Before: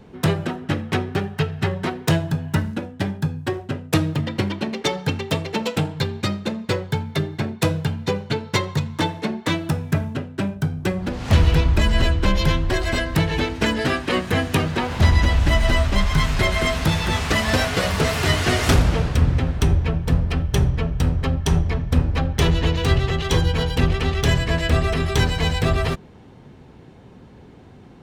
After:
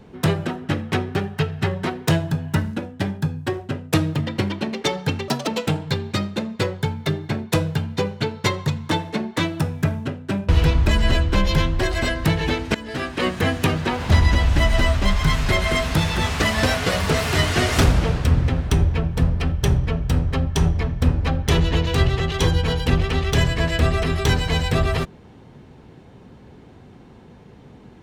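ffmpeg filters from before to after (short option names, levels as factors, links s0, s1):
-filter_complex "[0:a]asplit=5[s0][s1][s2][s3][s4];[s0]atrim=end=5.284[s5];[s1]atrim=start=5.28:end=5.57,asetpts=PTS-STARTPTS,asetrate=65268,aresample=44100,atrim=end_sample=8641,asetpts=PTS-STARTPTS[s6];[s2]atrim=start=5.566:end=10.582[s7];[s3]atrim=start=11.388:end=13.65,asetpts=PTS-STARTPTS,afade=t=out:st=2.258:d=0.004:c=hsin:silence=0.125893[s8];[s4]atrim=start=13.65,asetpts=PTS-STARTPTS,afade=t=in:d=0.54:silence=0.125893[s9];[s5][s6]acrossfade=d=0.004:c1=hsin:c2=hsin[s10];[s10][s7]acrossfade=d=0.004:c1=hsin:c2=hsin[s11];[s8][s9]concat=n=2:v=0:a=1[s12];[s11][s12]acrossfade=d=0.004:c1=hsin:c2=hsin"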